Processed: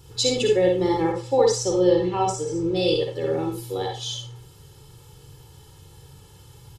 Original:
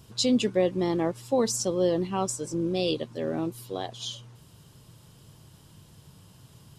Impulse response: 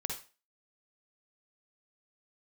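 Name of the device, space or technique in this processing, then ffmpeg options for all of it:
microphone above a desk: -filter_complex "[0:a]aecho=1:1:2.3:0.85[link_01];[1:a]atrim=start_sample=2205[link_02];[link_01][link_02]afir=irnorm=-1:irlink=0,asettb=1/sr,asplit=3[link_03][link_04][link_05];[link_03]atrim=end=1.124[link_06];[link_04]atrim=start=1.12:end=2.76,asetpts=PTS-STARTPTS,afade=type=in:duration=0.004:curve=qsin,afade=type=out:start_time=1.636:duration=0.004:curve=qsin,lowpass=6100[link_07];[link_05]atrim=start=2.756[link_08];[link_06][link_07]acrossfade=duration=0.004:curve1=hsin:curve2=qsin[link_09];[link_09][link_08]acrossfade=duration=0.004:curve1=qsin:curve2=hsin,volume=1.5dB"

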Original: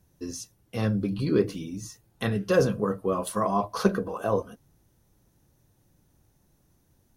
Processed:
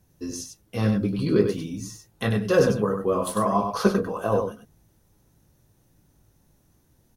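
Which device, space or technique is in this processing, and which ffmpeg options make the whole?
slapback doubling: -filter_complex "[0:a]asplit=3[link_01][link_02][link_03];[link_02]adelay=19,volume=-8dB[link_04];[link_03]adelay=97,volume=-6dB[link_05];[link_01][link_04][link_05]amix=inputs=3:normalize=0,volume=1.5dB"

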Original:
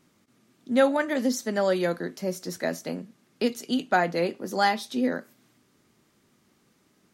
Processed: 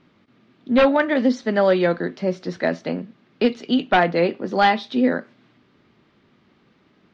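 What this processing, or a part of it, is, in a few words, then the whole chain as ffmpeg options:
synthesiser wavefolder: -af "aeval=exprs='0.178*(abs(mod(val(0)/0.178+3,4)-2)-1)':channel_layout=same,lowpass=frequency=3900:width=0.5412,lowpass=frequency=3900:width=1.3066,volume=7dB"

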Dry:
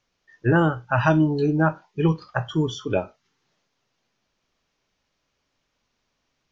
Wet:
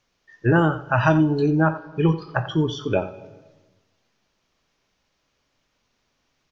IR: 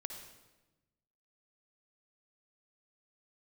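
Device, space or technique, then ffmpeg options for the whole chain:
compressed reverb return: -filter_complex "[0:a]asettb=1/sr,asplit=3[link_01][link_02][link_03];[link_01]atrim=end=1.604[link_04];[link_02]atrim=start=1.6:end=2.99,asetpts=PTS-STARTPTS,afade=type=in:duration=0.004:curve=qsin,afade=type=out:start_time=1.386:duration=0.004:curve=qsin,lowpass=frequency=5500:width=0.5412,lowpass=frequency=5500:width=1.3066[link_05];[link_03]atrim=start=2.986[link_06];[link_04][link_05]acrossfade=duration=0.004:curve1=hsin:curve2=qsin[link_07];[link_07][link_06]acrossfade=duration=0.004:curve1=qsin:curve2=hsin,asplit=2[link_08][link_09];[link_09]adelay=87.46,volume=-14dB,highshelf=frequency=4000:gain=-1.97[link_10];[link_08][link_10]amix=inputs=2:normalize=0,asplit=2[link_11][link_12];[1:a]atrim=start_sample=2205[link_13];[link_12][link_13]afir=irnorm=-1:irlink=0,acompressor=threshold=-31dB:ratio=4,volume=-3.5dB[link_14];[link_11][link_14]amix=inputs=2:normalize=0"

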